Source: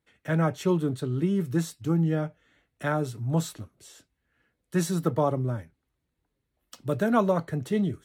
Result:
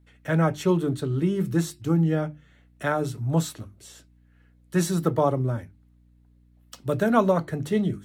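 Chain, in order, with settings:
mains-hum notches 50/100/150/200/250/300/350 Hz
mains hum 60 Hz, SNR 32 dB
level +3 dB

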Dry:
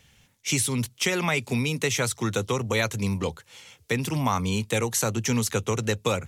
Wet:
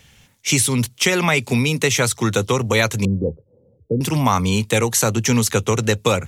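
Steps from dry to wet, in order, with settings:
0:03.05–0:04.01: elliptic low-pass filter 540 Hz, stop band 80 dB
level +7.5 dB

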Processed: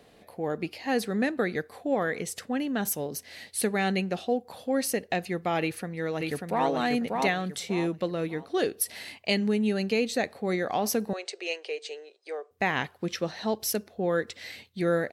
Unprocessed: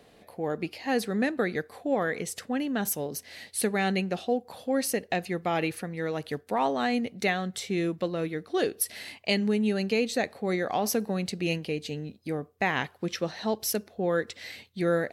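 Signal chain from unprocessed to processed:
0:05.61–0:06.69: delay throw 590 ms, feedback 30%, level −3 dB
0:11.13–0:12.51: Chebyshev band-pass filter 390–8,800 Hz, order 5

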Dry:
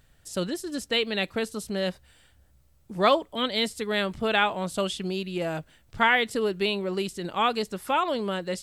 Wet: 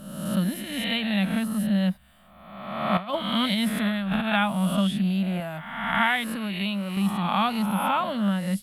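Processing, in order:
peak hold with a rise ahead of every peak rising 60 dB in 1.17 s
drawn EQ curve 130 Hz 0 dB, 200 Hz +14 dB, 420 Hz −17 dB, 630 Hz 0 dB, 1,100 Hz 0 dB, 2,300 Hz −2 dB, 3,400 Hz −2 dB, 5,200 Hz −12 dB, 7,400 Hz −12 dB, 11,000 Hz +5 dB
0:02.97–0:04.33: compressor whose output falls as the input rises −22 dBFS, ratio −0.5
0:05.40–0:06.97: low-shelf EQ 490 Hz −6 dB
level −2.5 dB

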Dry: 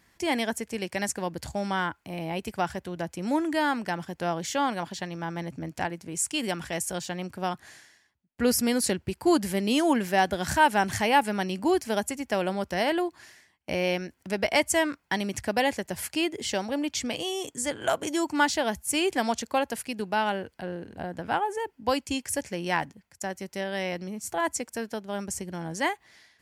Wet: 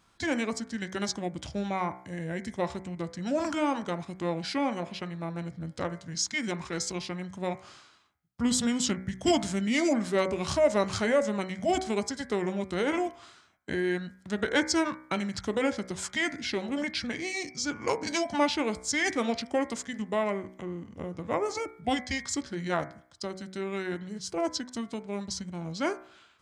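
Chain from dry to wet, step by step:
formants moved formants −6 semitones
hum removal 62.71 Hz, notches 38
level −1.5 dB

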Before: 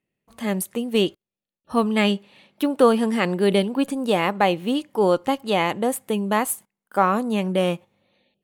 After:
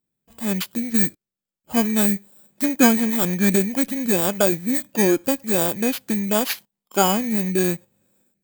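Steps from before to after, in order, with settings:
samples in bit-reversed order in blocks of 16 samples
formants moved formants −5 semitones
level +1 dB

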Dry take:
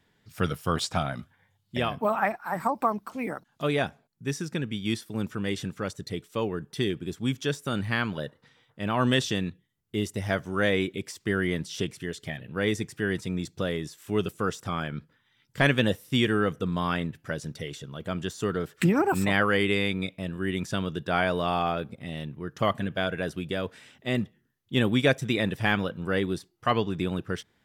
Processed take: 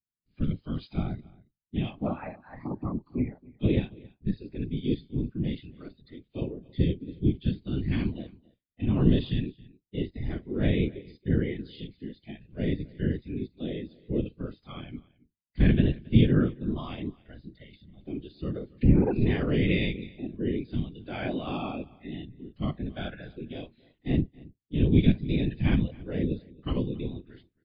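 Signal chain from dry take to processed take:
sub-octave generator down 1 octave, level +1 dB
noise gate with hold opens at −48 dBFS
noise reduction from a noise print of the clip's start 16 dB
parametric band 2,400 Hz +4.5 dB 0.87 octaves
harmonic and percussive parts rebalanced percussive −17 dB
drawn EQ curve 300 Hz 0 dB, 460 Hz −9 dB, 970 Hz −16 dB, 3,500 Hz −8 dB
random phases in short frames
on a send: single-tap delay 273 ms −23 dB
on the sum: level +5 dB
MP3 40 kbit/s 11,025 Hz

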